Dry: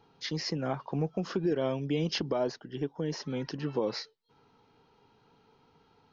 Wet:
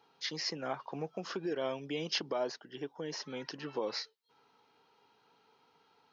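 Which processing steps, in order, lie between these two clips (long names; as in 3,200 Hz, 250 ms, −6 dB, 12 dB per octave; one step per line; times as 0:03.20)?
high-pass filter 730 Hz 6 dB per octave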